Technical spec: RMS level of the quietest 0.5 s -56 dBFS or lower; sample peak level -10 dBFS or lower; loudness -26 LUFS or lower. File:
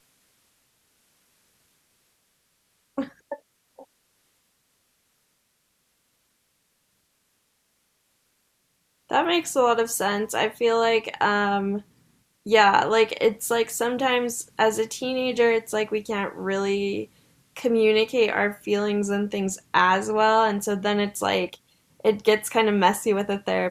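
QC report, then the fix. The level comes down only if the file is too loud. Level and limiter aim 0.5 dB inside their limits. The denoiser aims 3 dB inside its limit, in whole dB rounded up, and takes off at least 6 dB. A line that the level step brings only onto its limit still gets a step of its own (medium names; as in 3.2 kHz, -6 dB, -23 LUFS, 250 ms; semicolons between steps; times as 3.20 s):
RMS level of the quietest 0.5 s -70 dBFS: pass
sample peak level -4.0 dBFS: fail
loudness -23.0 LUFS: fail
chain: trim -3.5 dB; peak limiter -10.5 dBFS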